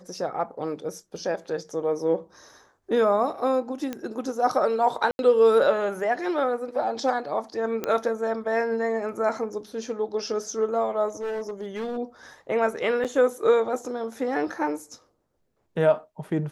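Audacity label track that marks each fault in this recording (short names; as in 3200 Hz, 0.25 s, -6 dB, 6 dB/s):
3.930000	3.930000	pop -17 dBFS
5.110000	5.190000	gap 81 ms
7.840000	7.840000	pop -13 dBFS
11.080000	11.980000	clipped -27 dBFS
13.040000	13.050000	gap 7.4 ms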